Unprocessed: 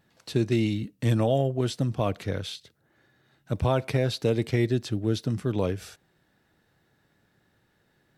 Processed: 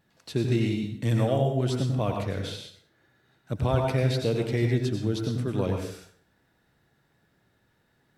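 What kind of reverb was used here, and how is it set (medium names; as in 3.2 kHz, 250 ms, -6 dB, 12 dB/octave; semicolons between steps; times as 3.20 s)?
plate-style reverb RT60 0.55 s, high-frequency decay 0.75×, pre-delay 80 ms, DRR 2 dB; trim -2.5 dB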